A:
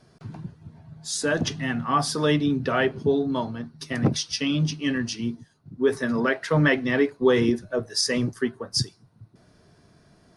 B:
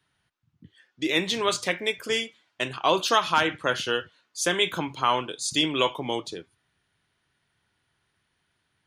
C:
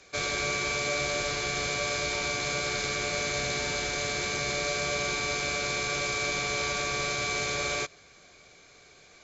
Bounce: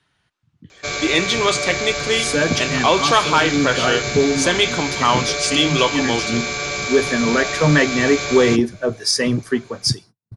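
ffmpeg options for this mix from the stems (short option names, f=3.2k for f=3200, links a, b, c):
-filter_complex "[0:a]agate=range=-41dB:threshold=-44dB:ratio=16:detection=peak,acompressor=mode=upward:threshold=-35dB:ratio=2.5,adelay=1100,volume=-1dB[a];[1:a]lowpass=f=8.8k:w=0.5412,lowpass=f=8.8k:w=1.3066,volume=0dB,asplit=2[b][c];[2:a]adelay=700,volume=-1dB[d];[c]apad=whole_len=505799[e];[a][e]sidechaincompress=threshold=-29dB:ratio=8:attack=16:release=152[f];[f][b][d]amix=inputs=3:normalize=0,acontrast=77"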